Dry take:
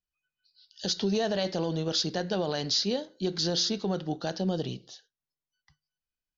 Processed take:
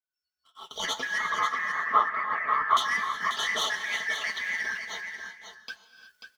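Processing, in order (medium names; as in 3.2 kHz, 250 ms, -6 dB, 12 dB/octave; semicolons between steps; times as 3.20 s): four frequency bands reordered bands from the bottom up 3142; recorder AGC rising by 22 dB/s; high-pass 220 Hz 6 dB/octave; comb 4.6 ms, depth 85%; waveshaping leveller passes 2; flange 1.7 Hz, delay 3.5 ms, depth 8.2 ms, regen +47%; 1.18–2.77 s: resonant low-pass 1.2 kHz, resonance Q 14; flange 0.81 Hz, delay 1.3 ms, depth 3.3 ms, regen -69%; delay 539 ms -8 dB; gated-style reverb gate 390 ms rising, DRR 10 dB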